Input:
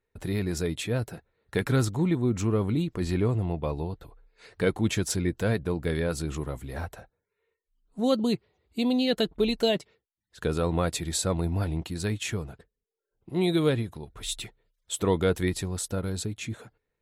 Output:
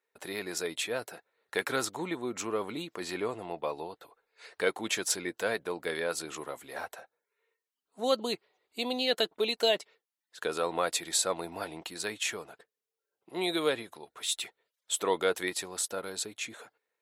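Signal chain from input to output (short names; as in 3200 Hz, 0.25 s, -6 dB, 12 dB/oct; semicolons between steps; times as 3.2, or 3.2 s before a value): HPF 550 Hz 12 dB/oct; gain +1.5 dB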